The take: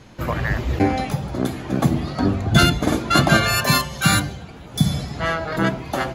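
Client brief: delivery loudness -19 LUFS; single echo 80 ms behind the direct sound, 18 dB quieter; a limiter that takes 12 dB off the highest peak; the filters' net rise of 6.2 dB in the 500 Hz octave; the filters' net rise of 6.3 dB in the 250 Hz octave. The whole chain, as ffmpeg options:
-af "equalizer=f=250:t=o:g=6.5,equalizer=f=500:t=o:g=6.5,alimiter=limit=-10dB:level=0:latency=1,aecho=1:1:80:0.126,volume=2dB"

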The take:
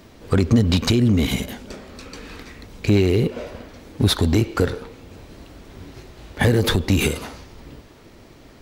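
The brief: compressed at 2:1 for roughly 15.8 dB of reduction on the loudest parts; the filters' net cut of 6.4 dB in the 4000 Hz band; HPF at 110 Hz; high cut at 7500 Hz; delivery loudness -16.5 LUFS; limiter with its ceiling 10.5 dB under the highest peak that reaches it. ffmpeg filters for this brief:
-af "highpass=110,lowpass=7.5k,equalizer=f=4k:t=o:g=-7.5,acompressor=threshold=-43dB:ratio=2,volume=24.5dB,alimiter=limit=-3.5dB:level=0:latency=1"

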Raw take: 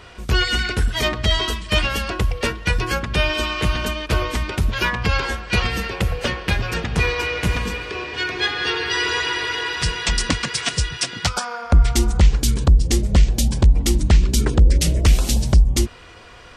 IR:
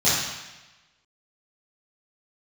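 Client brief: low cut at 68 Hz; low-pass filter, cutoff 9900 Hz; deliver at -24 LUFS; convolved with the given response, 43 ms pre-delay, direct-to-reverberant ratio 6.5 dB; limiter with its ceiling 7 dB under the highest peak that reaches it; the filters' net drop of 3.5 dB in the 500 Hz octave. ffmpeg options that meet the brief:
-filter_complex "[0:a]highpass=68,lowpass=9.9k,equalizer=f=500:t=o:g=-4.5,alimiter=limit=-12.5dB:level=0:latency=1,asplit=2[a][b];[1:a]atrim=start_sample=2205,adelay=43[c];[b][c]afir=irnorm=-1:irlink=0,volume=-24dB[d];[a][d]amix=inputs=2:normalize=0,volume=-1.5dB"

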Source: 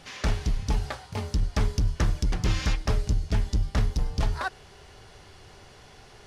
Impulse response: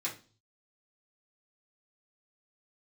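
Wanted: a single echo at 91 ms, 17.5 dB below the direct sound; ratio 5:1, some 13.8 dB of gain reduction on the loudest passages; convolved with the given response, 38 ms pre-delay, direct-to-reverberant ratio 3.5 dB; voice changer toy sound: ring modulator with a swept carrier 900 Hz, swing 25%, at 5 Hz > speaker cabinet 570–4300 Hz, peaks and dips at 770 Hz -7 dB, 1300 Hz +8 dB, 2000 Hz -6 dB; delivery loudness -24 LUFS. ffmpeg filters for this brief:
-filter_complex "[0:a]acompressor=threshold=-36dB:ratio=5,aecho=1:1:91:0.133,asplit=2[a][b];[1:a]atrim=start_sample=2205,adelay=38[c];[b][c]afir=irnorm=-1:irlink=0,volume=-6.5dB[d];[a][d]amix=inputs=2:normalize=0,aeval=exprs='val(0)*sin(2*PI*900*n/s+900*0.25/5*sin(2*PI*5*n/s))':c=same,highpass=570,equalizer=f=770:t=q:w=4:g=-7,equalizer=f=1.3k:t=q:w=4:g=8,equalizer=f=2k:t=q:w=4:g=-6,lowpass=f=4.3k:w=0.5412,lowpass=f=4.3k:w=1.3066,volume=17.5dB"

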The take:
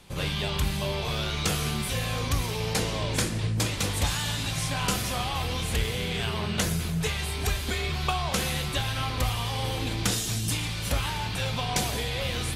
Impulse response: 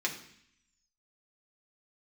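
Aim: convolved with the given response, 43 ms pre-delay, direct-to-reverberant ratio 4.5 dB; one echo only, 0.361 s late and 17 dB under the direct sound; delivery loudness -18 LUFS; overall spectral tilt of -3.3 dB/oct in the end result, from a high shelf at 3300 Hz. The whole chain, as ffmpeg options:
-filter_complex "[0:a]highshelf=f=3.3k:g=7,aecho=1:1:361:0.141,asplit=2[a][b];[1:a]atrim=start_sample=2205,adelay=43[c];[b][c]afir=irnorm=-1:irlink=0,volume=-10.5dB[d];[a][d]amix=inputs=2:normalize=0,volume=6.5dB"

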